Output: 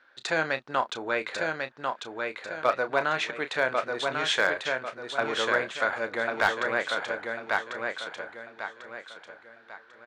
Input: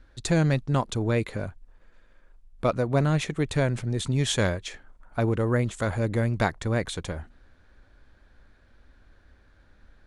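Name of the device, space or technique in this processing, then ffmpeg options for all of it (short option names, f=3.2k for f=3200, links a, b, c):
megaphone: -filter_complex "[0:a]asettb=1/sr,asplit=3[a][b][c];[a]atrim=end=2.814[d];[b]atrim=start=2.81:end=3.22,asetpts=PTS-STARTPTS,afade=t=in:d=0.004:c=qsin,afade=t=out:st=0.406:d=0.004:c=qsin,equalizer=f=4.7k:t=o:w=2.8:g=2.5[e];[c]atrim=start=3.216[f];[d][e]acrossfade=d=0.004:c1=hsin:c2=qsin[g];[g][f]acrossfade=d=0.004:c1=qsin:c2=hsin,highpass=680,lowpass=3.9k,equalizer=f=1.5k:t=o:w=0.33:g=5.5,aecho=1:1:1095|2190|3285|4380:0.631|0.221|0.0773|0.0271,asoftclip=type=hard:threshold=-16dB,asplit=2[h][i];[i]adelay=31,volume=-11dB[j];[h][j]amix=inputs=2:normalize=0,volume=3.5dB"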